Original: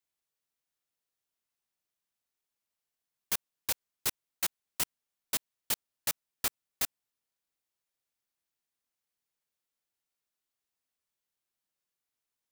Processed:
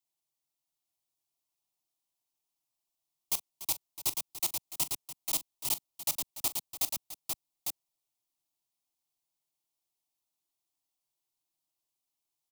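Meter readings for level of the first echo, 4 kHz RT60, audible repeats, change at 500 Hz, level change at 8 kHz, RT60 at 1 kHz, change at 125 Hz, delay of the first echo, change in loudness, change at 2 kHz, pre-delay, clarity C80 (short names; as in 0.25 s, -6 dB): -15.5 dB, none, 3, -1.5 dB, +2.0 dB, none, +0.5 dB, 41 ms, +1.0 dB, -6.0 dB, none, none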